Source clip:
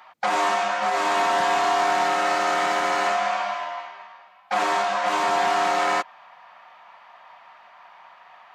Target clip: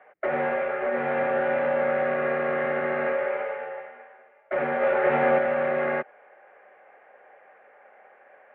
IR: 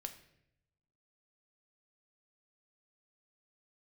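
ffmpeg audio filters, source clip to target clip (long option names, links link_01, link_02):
-filter_complex "[0:a]asplit=3[link_01][link_02][link_03];[link_01]afade=type=out:start_time=4.81:duration=0.02[link_04];[link_02]acontrast=33,afade=type=in:start_time=4.81:duration=0.02,afade=type=out:start_time=5.37:duration=0.02[link_05];[link_03]afade=type=in:start_time=5.37:duration=0.02[link_06];[link_04][link_05][link_06]amix=inputs=3:normalize=0,highpass=frequency=360:width_type=q:width=0.5412,highpass=frequency=360:width_type=q:width=1.307,lowpass=frequency=2300:width_type=q:width=0.5176,lowpass=frequency=2300:width_type=q:width=0.7071,lowpass=frequency=2300:width_type=q:width=1.932,afreqshift=-160,equalizer=frequency=1000:width_type=o:width=0.56:gain=-14.5"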